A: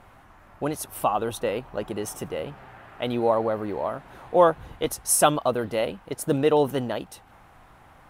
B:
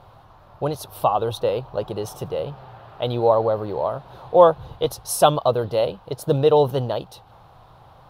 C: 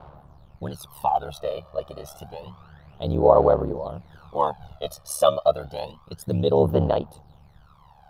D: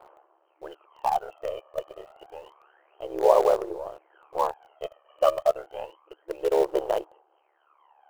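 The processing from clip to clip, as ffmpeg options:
-af "equalizer=f=125:t=o:w=1:g=10,equalizer=f=250:t=o:w=1:g=-7,equalizer=f=500:t=o:w=1:g=6,equalizer=f=1k:t=o:w=1:g=5,equalizer=f=2k:t=o:w=1:g=-11,equalizer=f=4k:t=o:w=1:g=11,equalizer=f=8k:t=o:w=1:g=-9"
-af "aphaser=in_gain=1:out_gain=1:delay=1.7:decay=0.78:speed=0.29:type=sinusoidal,aeval=exprs='val(0)*sin(2*PI*36*n/s)':c=same,volume=-6.5dB"
-filter_complex "[0:a]afftfilt=real='re*between(b*sr/4096,320,3200)':imag='im*between(b*sr/4096,320,3200)':win_size=4096:overlap=0.75,asplit=2[a][b];[b]acrusher=bits=4:dc=4:mix=0:aa=0.000001,volume=-11dB[c];[a][c]amix=inputs=2:normalize=0,volume=-5dB"

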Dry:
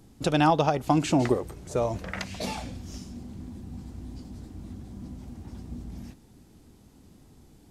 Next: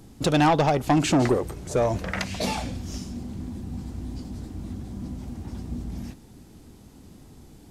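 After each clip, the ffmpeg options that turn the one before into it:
-af "asoftclip=type=tanh:threshold=-20dB,volume=6dB"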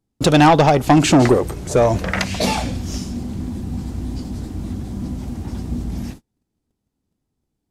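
-af "agate=range=-36dB:threshold=-41dB:ratio=16:detection=peak,volume=8dB"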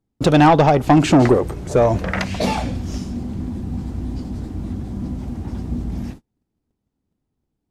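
-af "highshelf=f=3.4k:g=-9"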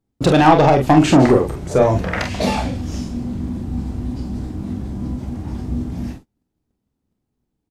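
-af "aecho=1:1:29|45:0.355|0.501"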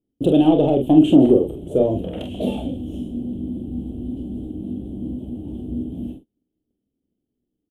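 -af "firequalizer=gain_entry='entry(120,0);entry(290,11);entry(640,3);entry(1000,-15);entry(2000,-23);entry(3100,8);entry(4700,-26);entry(9400,0)':delay=0.05:min_phase=1,volume=-9dB"

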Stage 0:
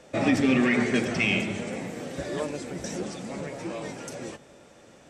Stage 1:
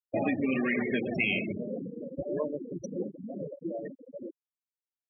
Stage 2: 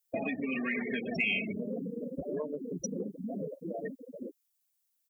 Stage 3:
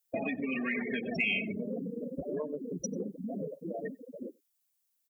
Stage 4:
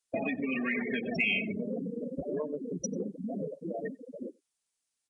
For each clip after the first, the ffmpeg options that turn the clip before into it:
-af "afftfilt=real='re*gte(hypot(re,im),0.0794)':imag='im*gte(hypot(re,im),0.0794)':win_size=1024:overlap=0.75,acompressor=threshold=-26dB:ratio=4,lowshelf=f=150:g=-10,volume=2dB"
-af "aecho=1:1:4.4:0.55,acompressor=threshold=-32dB:ratio=6,crystalizer=i=4.5:c=0"
-filter_complex "[0:a]asplit=2[a][b];[b]adelay=93.29,volume=-28dB,highshelf=f=4k:g=-2.1[c];[a][c]amix=inputs=2:normalize=0"
-af "aresample=22050,aresample=44100,volume=1.5dB"

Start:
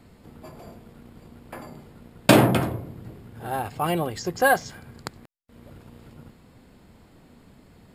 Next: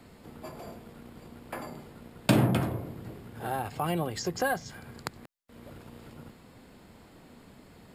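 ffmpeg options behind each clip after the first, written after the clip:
-filter_complex "[0:a]lowshelf=f=190:g=-6.5,acrossover=split=220[a][b];[b]acompressor=threshold=-34dB:ratio=2.5[c];[a][c]amix=inputs=2:normalize=0,volume=2dB"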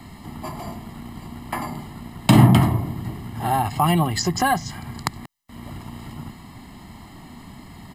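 -af "aecho=1:1:1:0.84,alimiter=level_in=10dB:limit=-1dB:release=50:level=0:latency=1,volume=-1dB"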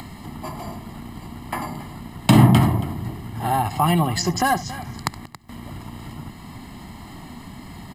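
-af "acompressor=mode=upward:threshold=-32dB:ratio=2.5,aecho=1:1:70|277:0.119|0.158"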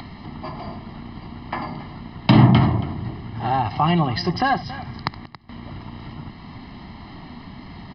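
-af "aresample=11025,aresample=44100"

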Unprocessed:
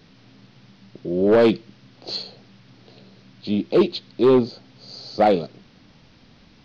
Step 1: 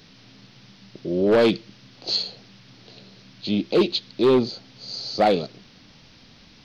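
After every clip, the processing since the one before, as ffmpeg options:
-filter_complex "[0:a]highshelf=f=2.6k:g=9.5,asplit=2[a][b];[b]alimiter=limit=-13.5dB:level=0:latency=1,volume=-2.5dB[c];[a][c]amix=inputs=2:normalize=0,volume=-5.5dB"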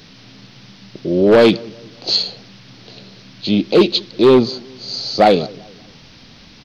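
-filter_complex "[0:a]asplit=2[a][b];[b]adelay=194,lowpass=f=1k:p=1,volume=-23dB,asplit=2[c][d];[d]adelay=194,lowpass=f=1k:p=1,volume=0.45,asplit=2[e][f];[f]adelay=194,lowpass=f=1k:p=1,volume=0.45[g];[a][c][e][g]amix=inputs=4:normalize=0,volume=7.5dB"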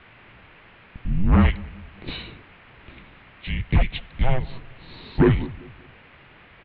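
-af "acompressor=threshold=-14dB:ratio=2.5,highpass=f=330:t=q:w=0.5412,highpass=f=330:t=q:w=1.307,lowpass=f=2.9k:t=q:w=0.5176,lowpass=f=2.9k:t=q:w=0.7071,lowpass=f=2.9k:t=q:w=1.932,afreqshift=-380"

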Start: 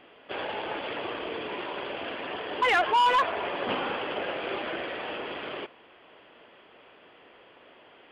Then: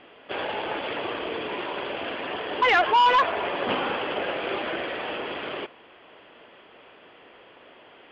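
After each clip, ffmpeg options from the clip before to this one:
-af "lowpass=f=5.9k:w=0.5412,lowpass=f=5.9k:w=1.3066,volume=3.5dB"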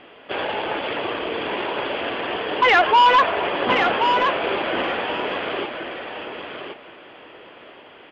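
-af "aecho=1:1:1075|2150|3225:0.501|0.0802|0.0128,volume=4.5dB"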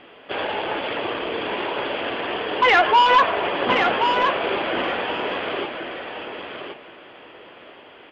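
-af "bandreject=f=75.23:t=h:w=4,bandreject=f=150.46:t=h:w=4,bandreject=f=225.69:t=h:w=4,bandreject=f=300.92:t=h:w=4,bandreject=f=376.15:t=h:w=4,bandreject=f=451.38:t=h:w=4,bandreject=f=526.61:t=h:w=4,bandreject=f=601.84:t=h:w=4,bandreject=f=677.07:t=h:w=4,bandreject=f=752.3:t=h:w=4,bandreject=f=827.53:t=h:w=4,bandreject=f=902.76:t=h:w=4,bandreject=f=977.99:t=h:w=4,bandreject=f=1.05322k:t=h:w=4,bandreject=f=1.12845k:t=h:w=4,bandreject=f=1.20368k:t=h:w=4,bandreject=f=1.27891k:t=h:w=4,bandreject=f=1.35414k:t=h:w=4,bandreject=f=1.42937k:t=h:w=4,bandreject=f=1.5046k:t=h:w=4,bandreject=f=1.57983k:t=h:w=4,bandreject=f=1.65506k:t=h:w=4,bandreject=f=1.73029k:t=h:w=4,bandreject=f=1.80552k:t=h:w=4,bandreject=f=1.88075k:t=h:w=4,bandreject=f=1.95598k:t=h:w=4,bandreject=f=2.03121k:t=h:w=4,bandreject=f=2.10644k:t=h:w=4,bandreject=f=2.18167k:t=h:w=4,bandreject=f=2.2569k:t=h:w=4,bandreject=f=2.33213k:t=h:w=4,bandreject=f=2.40736k:t=h:w=4,bandreject=f=2.48259k:t=h:w=4,bandreject=f=2.55782k:t=h:w=4,bandreject=f=2.63305k:t=h:w=4,bandreject=f=2.70828k:t=h:w=4,bandreject=f=2.78351k:t=h:w=4,bandreject=f=2.85874k:t=h:w=4,bandreject=f=2.93397k:t=h:w=4"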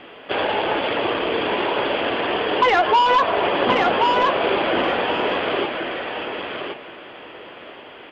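-filter_complex "[0:a]acrossover=split=1200|3300[a][b][c];[a]acompressor=threshold=-20dB:ratio=4[d];[b]acompressor=threshold=-33dB:ratio=4[e];[c]acompressor=threshold=-36dB:ratio=4[f];[d][e][f]amix=inputs=3:normalize=0,volume=5dB"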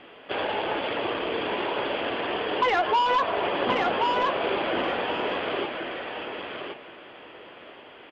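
-af "aresample=32000,aresample=44100,volume=-6.5dB"

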